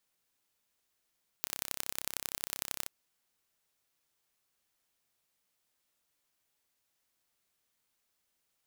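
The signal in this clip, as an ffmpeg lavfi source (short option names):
-f lavfi -i "aevalsrc='0.531*eq(mod(n,1336),0)*(0.5+0.5*eq(mod(n,4008),0))':d=1.43:s=44100"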